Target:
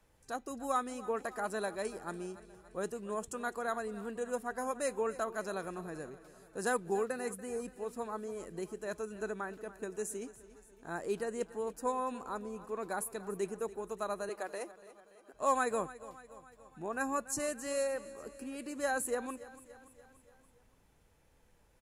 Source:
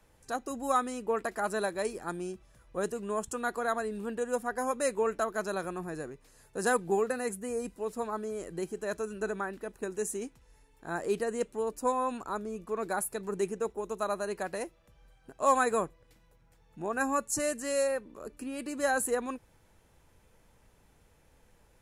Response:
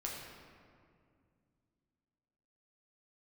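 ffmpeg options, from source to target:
-filter_complex "[0:a]asettb=1/sr,asplit=3[a][b][c];[a]atrim=end=14.294[d];[b]atrim=start=14.29:end=15.34,asetpts=PTS-STARTPTS,afade=t=in:d=0.004:c=qsin,afade=t=out:st=1.046:d=0.004:c=qsin,highpass=f=290:w=0.5412,highpass=f=290:w=1.3066[e];[c]atrim=start=15.336[f];[d][e]acrossfade=d=0.004:c1=hsin:c2=qsin[g];[g][f]acrossfade=d=0.004:c1=qsin:c2=hsin,aecho=1:1:287|574|861|1148|1435:0.141|0.0819|0.0475|0.0276|0.016,volume=-5dB"

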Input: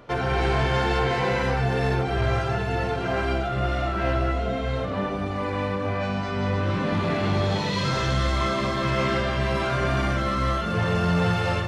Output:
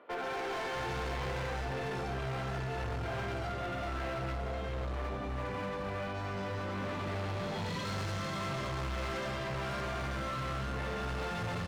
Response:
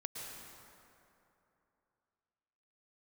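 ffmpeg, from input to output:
-filter_complex "[0:a]acrossover=split=260|3400[a][b][c];[c]adelay=140[d];[a]adelay=650[e];[e][b][d]amix=inputs=3:normalize=0,volume=27dB,asoftclip=hard,volume=-27dB,volume=-7dB"

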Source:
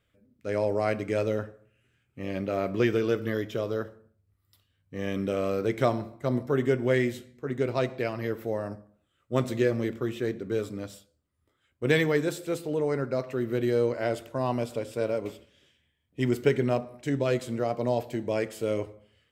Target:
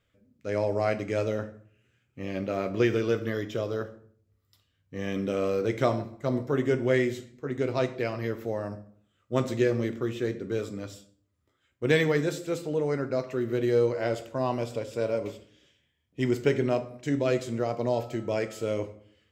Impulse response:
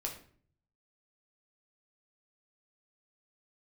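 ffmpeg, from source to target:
-filter_complex "[0:a]asettb=1/sr,asplit=3[a][b][c];[a]atrim=end=17.934[d];[b]atrim=start=17.93:end=18.67,asetpts=PTS-STARTPTS,afade=t=in:d=0.004:c=qsin,afade=t=out:st=0.736:d=0.004:c=qsin,aeval=exprs='val(0)+0.00158*sin(2*PI*1300*n/s)':c=same[e];[c]atrim=start=18.666[f];[d][e]acrossfade=d=0.004:c1=hsin:c2=qsin[g];[g][f]acrossfade=d=0.004:c1=qsin:c2=hsin,asplit=2[h][i];[i]lowpass=f=7.3k:t=q:w=3[j];[1:a]atrim=start_sample=2205[k];[j][k]afir=irnorm=-1:irlink=0,volume=-5.5dB[l];[h][l]amix=inputs=2:normalize=0,volume=-3.5dB"

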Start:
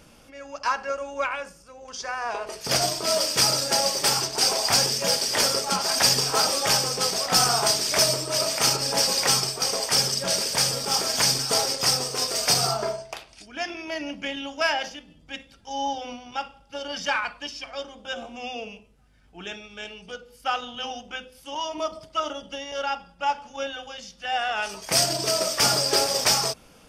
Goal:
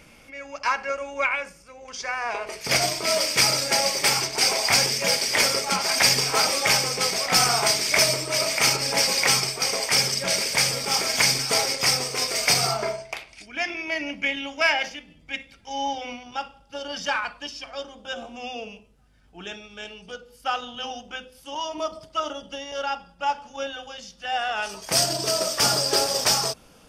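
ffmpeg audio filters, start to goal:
-af "asetnsamples=n=441:p=0,asendcmd='16.23 equalizer g -2.5',equalizer=f=2.2k:w=3.9:g=12.5"

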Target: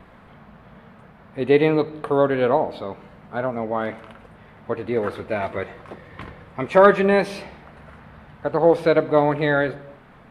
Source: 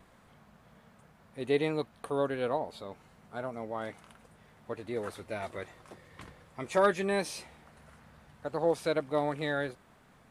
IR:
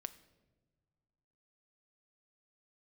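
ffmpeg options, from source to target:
-filter_complex "[0:a]asplit=2[a][b];[1:a]atrim=start_sample=2205,afade=t=out:st=0.37:d=0.01,atrim=end_sample=16758,lowpass=3.3k[c];[b][c]afir=irnorm=-1:irlink=0,volume=15dB[d];[a][d]amix=inputs=2:normalize=0,volume=-1dB"

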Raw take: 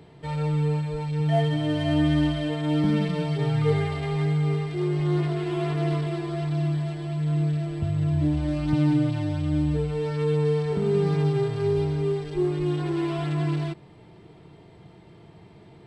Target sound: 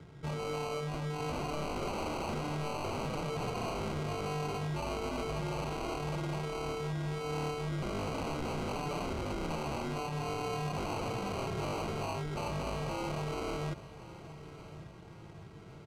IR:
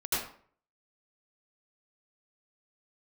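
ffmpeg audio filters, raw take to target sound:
-filter_complex "[0:a]acrossover=split=150|1700[a][b][c];[a]acontrast=60[d];[d][b][c]amix=inputs=3:normalize=0,acrusher=samples=25:mix=1:aa=0.000001,aeval=exprs='0.0501*(abs(mod(val(0)/0.0501+3,4)-2)-1)':c=same,adynamicsmooth=sensitivity=2:basefreq=6.7k,aecho=1:1:1107|2214|3321|4428:0.158|0.0761|0.0365|0.0175,volume=-5dB"

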